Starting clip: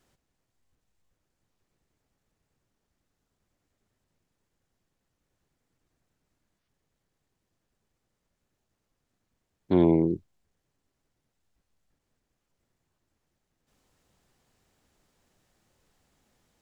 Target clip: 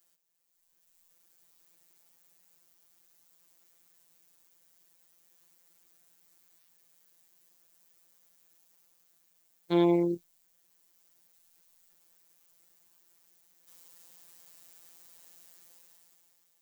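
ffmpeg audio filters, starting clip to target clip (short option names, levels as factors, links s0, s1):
-af "afftfilt=real='hypot(re,im)*cos(PI*b)':imag='0':win_size=1024:overlap=0.75,dynaudnorm=f=150:g=11:m=5.01,aemphasis=mode=production:type=riaa,volume=0.473"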